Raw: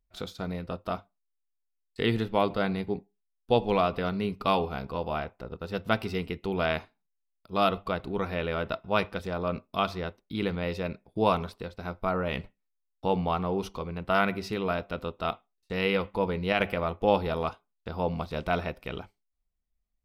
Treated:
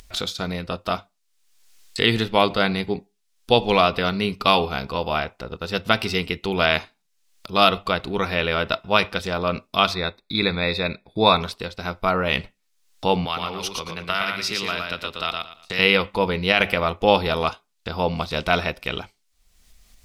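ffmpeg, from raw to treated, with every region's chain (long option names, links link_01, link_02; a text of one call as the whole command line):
ffmpeg -i in.wav -filter_complex "[0:a]asettb=1/sr,asplit=3[link_01][link_02][link_03];[link_01]atrim=end=9.944[link_04];[link_02]atrim=start=9.94:end=11.41,asetpts=PTS-STARTPTS,afade=type=in:duration=0.004:curve=qsin,afade=type=out:start_time=1.466:duration=0.004:curve=qsin,asuperstop=centerf=3000:order=12:qfactor=3.8,highshelf=frequency=4700:width_type=q:width=3:gain=-7[link_05];[link_03]atrim=start=11.406[link_06];[link_04][link_05]acrossfade=duration=0.004:curve1=hsin:curve2=qsin[link_07];[link_07][link_06]acrossfade=duration=0.004:curve1=qsin:curve2=hsin,asettb=1/sr,asplit=3[link_08][link_09][link_10];[link_08]atrim=end=13.254[link_11];[link_09]atrim=start=13.25:end=15.79,asetpts=PTS-STARTPTS,afade=type=in:duration=0.004:curve=qsin,afade=type=out:start_time=2.536:duration=0.004:curve=qsin,acrossover=split=160|1300[link_12][link_13][link_14];[link_12]acompressor=threshold=-51dB:ratio=4[link_15];[link_13]acompressor=threshold=-40dB:ratio=4[link_16];[link_14]acompressor=threshold=-35dB:ratio=4[link_17];[link_15][link_16][link_17]amix=inputs=3:normalize=0,aecho=1:1:115|230|345:0.668|0.134|0.0267,atrim=end_sample=112014[link_18];[link_10]atrim=start=15.786[link_19];[link_11][link_18]acrossfade=duration=0.004:curve1=hsin:curve2=qsin[link_20];[link_20][link_19]acrossfade=duration=0.004:curve1=qsin:curve2=hsin,acompressor=mode=upward:threshold=-38dB:ratio=2.5,equalizer=frequency=5200:width=0.33:gain=11.5,alimiter=level_in=6dB:limit=-1dB:release=50:level=0:latency=1,volume=-1dB" out.wav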